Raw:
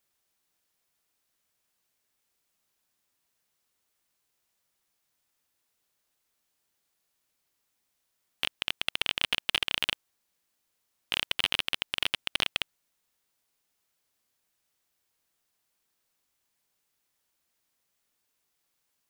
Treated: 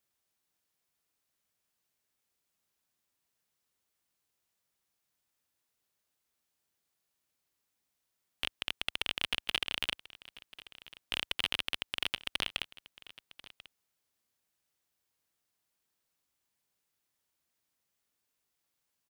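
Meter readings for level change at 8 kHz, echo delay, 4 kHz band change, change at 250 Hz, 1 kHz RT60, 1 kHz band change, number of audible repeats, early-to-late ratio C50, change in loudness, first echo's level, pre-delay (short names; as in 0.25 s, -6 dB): -5.0 dB, 1.04 s, -5.0 dB, -3.5 dB, none, -5.0 dB, 1, none, -5.0 dB, -19.0 dB, none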